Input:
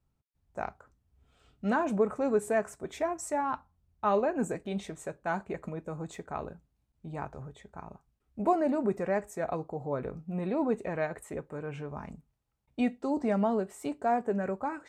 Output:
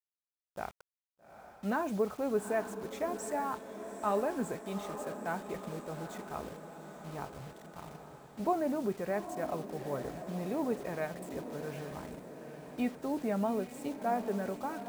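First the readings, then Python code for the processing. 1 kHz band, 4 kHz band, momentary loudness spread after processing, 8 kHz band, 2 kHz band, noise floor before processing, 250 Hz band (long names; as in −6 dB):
−4.0 dB, 0.0 dB, 15 LU, −2.0 dB, −4.0 dB, −78 dBFS, −4.0 dB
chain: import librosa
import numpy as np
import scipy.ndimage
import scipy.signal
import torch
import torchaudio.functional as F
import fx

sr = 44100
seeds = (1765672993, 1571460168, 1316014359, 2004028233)

y = fx.quant_dither(x, sr, seeds[0], bits=8, dither='none')
y = fx.echo_diffused(y, sr, ms=833, feedback_pct=62, wet_db=-10)
y = y * librosa.db_to_amplitude(-4.5)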